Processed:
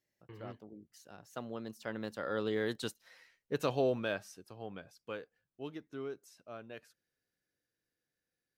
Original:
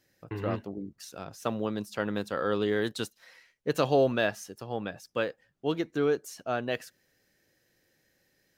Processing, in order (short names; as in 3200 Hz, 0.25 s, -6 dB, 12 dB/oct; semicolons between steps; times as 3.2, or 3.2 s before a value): Doppler pass-by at 3.03, 23 m/s, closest 21 m; gain -5 dB